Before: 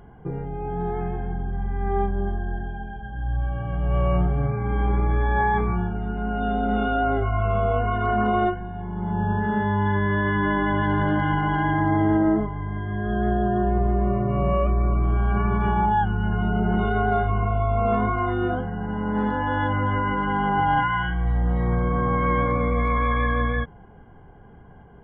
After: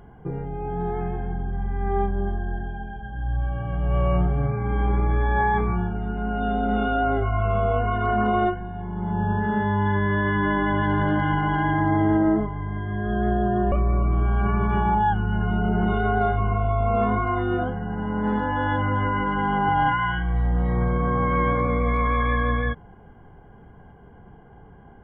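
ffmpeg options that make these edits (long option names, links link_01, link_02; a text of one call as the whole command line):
ffmpeg -i in.wav -filter_complex "[0:a]asplit=2[link_01][link_02];[link_01]atrim=end=13.722[link_03];[link_02]atrim=start=14.628[link_04];[link_03][link_04]acrossfade=duration=0.004:curve1=hsin:curve2=hsin" out.wav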